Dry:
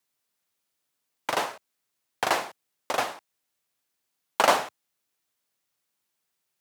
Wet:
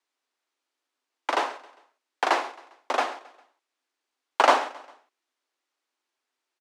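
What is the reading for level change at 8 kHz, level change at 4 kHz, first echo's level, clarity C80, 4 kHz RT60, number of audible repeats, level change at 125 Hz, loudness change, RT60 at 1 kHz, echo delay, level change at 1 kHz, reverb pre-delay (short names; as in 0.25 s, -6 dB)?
-6.0 dB, -1.0 dB, -19.5 dB, none, none, 3, under -25 dB, +1.5 dB, none, 0.134 s, +3.0 dB, none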